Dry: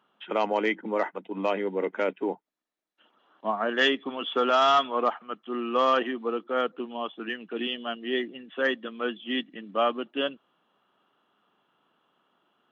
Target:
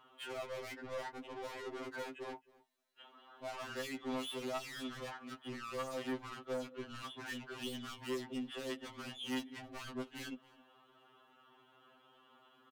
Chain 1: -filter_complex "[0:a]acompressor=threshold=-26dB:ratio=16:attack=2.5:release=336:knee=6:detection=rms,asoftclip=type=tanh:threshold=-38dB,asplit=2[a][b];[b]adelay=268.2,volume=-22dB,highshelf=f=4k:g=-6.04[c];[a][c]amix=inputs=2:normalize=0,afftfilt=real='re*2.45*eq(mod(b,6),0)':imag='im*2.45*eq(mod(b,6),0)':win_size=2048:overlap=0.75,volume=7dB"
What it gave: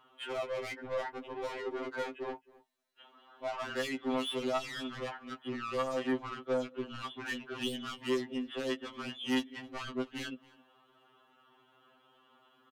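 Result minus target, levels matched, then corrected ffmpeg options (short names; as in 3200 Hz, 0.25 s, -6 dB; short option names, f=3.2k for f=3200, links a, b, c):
soft clip: distortion -4 dB
-filter_complex "[0:a]acompressor=threshold=-26dB:ratio=16:attack=2.5:release=336:knee=6:detection=rms,asoftclip=type=tanh:threshold=-46.5dB,asplit=2[a][b];[b]adelay=268.2,volume=-22dB,highshelf=f=4k:g=-6.04[c];[a][c]amix=inputs=2:normalize=0,afftfilt=real='re*2.45*eq(mod(b,6),0)':imag='im*2.45*eq(mod(b,6),0)':win_size=2048:overlap=0.75,volume=7dB"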